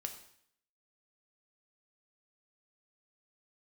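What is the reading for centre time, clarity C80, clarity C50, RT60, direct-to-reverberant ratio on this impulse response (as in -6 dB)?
15 ms, 12.0 dB, 9.5 dB, 0.65 s, 4.5 dB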